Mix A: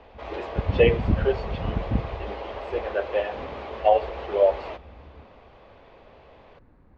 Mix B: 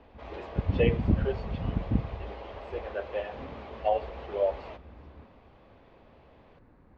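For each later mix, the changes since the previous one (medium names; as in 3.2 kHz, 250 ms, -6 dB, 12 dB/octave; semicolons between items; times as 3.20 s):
speech -8.0 dB; background: add bass shelf 69 Hz -6 dB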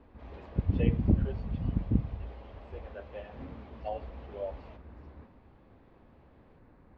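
speech -10.5 dB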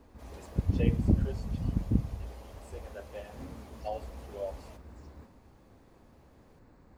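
master: remove low-pass 3.4 kHz 24 dB/octave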